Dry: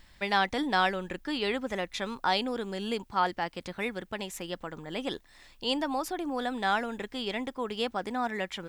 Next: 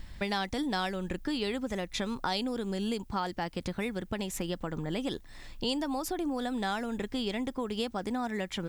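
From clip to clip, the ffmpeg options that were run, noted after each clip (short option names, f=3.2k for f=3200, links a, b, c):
-filter_complex "[0:a]lowshelf=f=330:g=11.5,acrossover=split=4500[a][b];[a]acompressor=threshold=-33dB:ratio=6[c];[c][b]amix=inputs=2:normalize=0,volume=3dB"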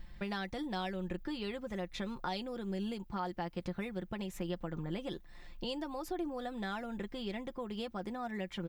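-af "equalizer=f=8.4k:w=0.56:g=-9,aecho=1:1:5.7:0.52,volume=-6.5dB"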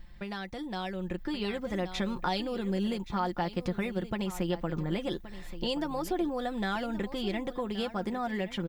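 -af "aecho=1:1:1124:0.2,dynaudnorm=f=210:g=11:m=7dB"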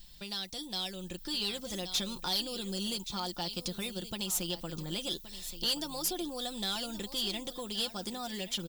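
-af "aexciter=amount=9.8:drive=5.8:freq=3k,asoftclip=type=tanh:threshold=-17.5dB,volume=-7dB"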